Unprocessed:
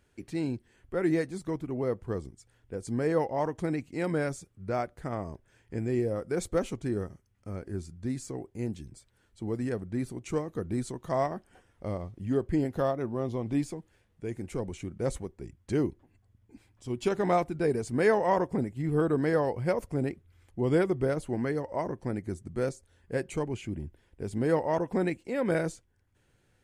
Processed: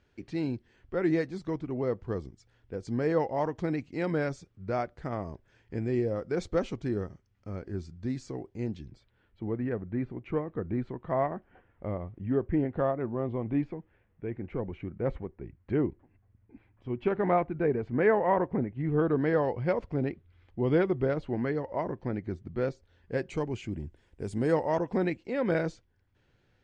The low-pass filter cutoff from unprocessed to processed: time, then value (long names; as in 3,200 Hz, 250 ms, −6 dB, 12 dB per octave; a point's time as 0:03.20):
low-pass filter 24 dB per octave
0:08.66 5,600 Hz
0:09.55 2,500 Hz
0:18.64 2,500 Hz
0:19.51 4,100 Hz
0:22.61 4,100 Hz
0:24.29 9,500 Hz
0:25.02 5,300 Hz